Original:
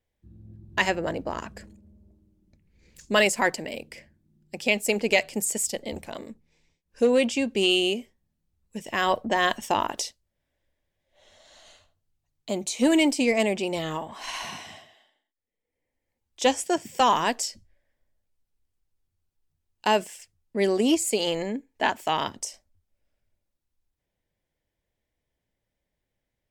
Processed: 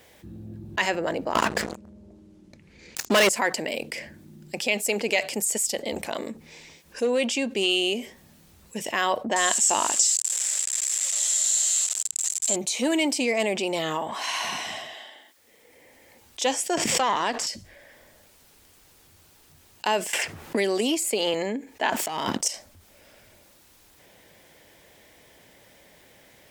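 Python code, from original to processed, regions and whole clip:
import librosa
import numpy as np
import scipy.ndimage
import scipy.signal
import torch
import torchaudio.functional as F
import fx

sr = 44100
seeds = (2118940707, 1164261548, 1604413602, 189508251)

y = fx.chain(x, sr, fx.lowpass(hz=7700.0, slope=12),
    fx.leveller(passes=5), at=(1.35, 3.29))
y = fx.chain(y, sr, fx.crossing_spikes(level_db=-23.5),
    fx.lowpass_res(hz=7500.0, q=12.0), at=(9.36, 12.56))
y = fx.chain(y, sr, fx.halfwave_gain(db=-7.0),
    fx.air_absorb(metres=53.0),
    fx.pre_swell(db_per_s=35.0), at=(16.77, 17.47))
y = fx.chain(y, sr, fx.dynamic_eq(hz=6500.0, q=1.3, threshold_db=-43.0, ratio=4.0, max_db=-5),
    fx.band_squash(depth_pct=100), at=(20.13, 21.34))
y = fx.chain(y, sr, fx.peak_eq(hz=190.0, db=5.0, octaves=1.9),
    fx.leveller(passes=2),
    fx.over_compress(threshold_db=-27.0, ratio=-0.5), at=(21.9, 22.48))
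y = fx.highpass(y, sr, hz=360.0, slope=6)
y = fx.env_flatten(y, sr, amount_pct=50)
y = y * 10.0 ** (-6.0 / 20.0)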